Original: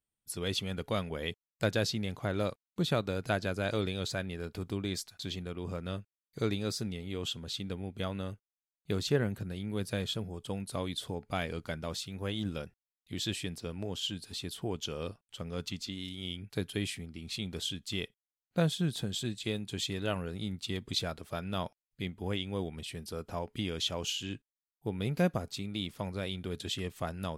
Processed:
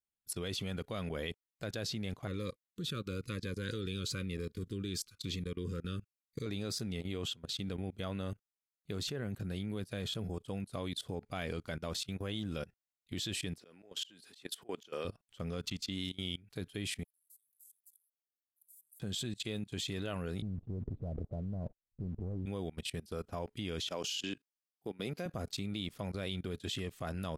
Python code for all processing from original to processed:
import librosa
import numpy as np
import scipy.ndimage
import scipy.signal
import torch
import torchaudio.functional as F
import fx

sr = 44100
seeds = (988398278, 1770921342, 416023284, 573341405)

y = fx.chain(x, sr, fx.cheby1_bandstop(low_hz=510.0, high_hz=1100.0, order=3),
    fx.notch_cascade(direction='falling', hz=1.0), at=(2.27, 6.46))
y = fx.chain(y, sr, fx.highpass(hz=300.0, slope=12),
    fx.peak_eq(hz=1800.0, db=4.0, octaves=0.7),
    fx.auto_swell(attack_ms=121.0), at=(13.59, 15.05))
y = fx.chain(y, sr, fx.cheby2_highpass(hz=2700.0, order=4, stop_db=80),
    fx.transient(attack_db=6, sustain_db=12), at=(17.04, 19.0))
y = fx.chain(y, sr, fx.cheby1_lowpass(hz=620.0, order=3),
    fx.tilt_eq(slope=-3.5),
    fx.leveller(passes=1), at=(20.42, 22.46))
y = fx.chain(y, sr, fx.highpass(hz=230.0, slope=12),
    fx.peak_eq(hz=5100.0, db=6.0, octaves=0.37), at=(23.88, 25.26))
y = fx.notch(y, sr, hz=890.0, q=12.0)
y = fx.level_steps(y, sr, step_db=21)
y = y * librosa.db_to_amplitude(4.0)